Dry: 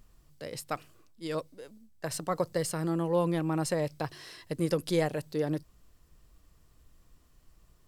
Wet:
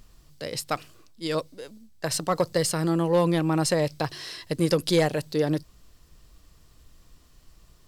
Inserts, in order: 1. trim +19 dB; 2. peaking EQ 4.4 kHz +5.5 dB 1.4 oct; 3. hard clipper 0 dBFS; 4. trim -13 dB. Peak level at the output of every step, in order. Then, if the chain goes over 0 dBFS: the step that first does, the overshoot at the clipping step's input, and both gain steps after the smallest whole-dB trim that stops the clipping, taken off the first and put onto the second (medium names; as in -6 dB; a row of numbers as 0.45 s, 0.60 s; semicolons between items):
+3.5 dBFS, +4.5 dBFS, 0.0 dBFS, -13.0 dBFS; step 1, 4.5 dB; step 1 +14 dB, step 4 -8 dB